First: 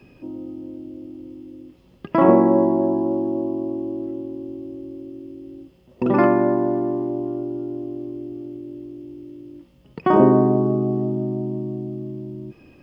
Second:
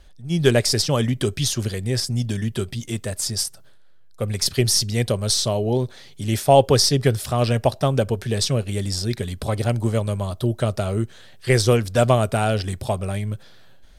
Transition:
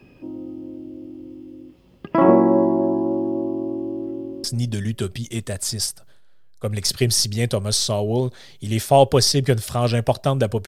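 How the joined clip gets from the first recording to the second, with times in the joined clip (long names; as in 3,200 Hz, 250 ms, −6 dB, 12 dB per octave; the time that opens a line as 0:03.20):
first
0:04.17–0:04.44: delay throw 150 ms, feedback 60%, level −12.5 dB
0:04.44: continue with second from 0:02.01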